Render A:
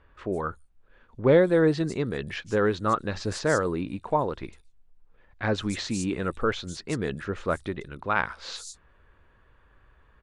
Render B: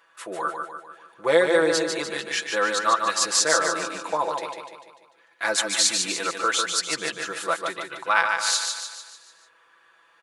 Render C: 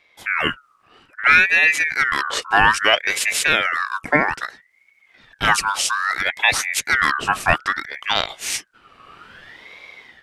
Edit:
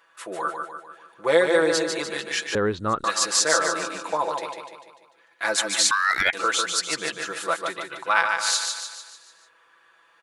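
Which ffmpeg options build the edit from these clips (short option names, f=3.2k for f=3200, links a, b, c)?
-filter_complex "[1:a]asplit=3[a][b][c];[a]atrim=end=2.552[d];[0:a]atrim=start=2.548:end=3.042[e];[b]atrim=start=3.038:end=5.912[f];[2:a]atrim=start=5.908:end=6.332[g];[c]atrim=start=6.328[h];[d][e]acrossfade=d=0.004:c1=hsin:c2=hsin[i];[i][f]acrossfade=d=0.004:c1=hsin:c2=hsin[j];[j][g]acrossfade=d=0.004:c1=hsin:c2=hsin[k];[k][h]acrossfade=d=0.004:c1=hsin:c2=hsin"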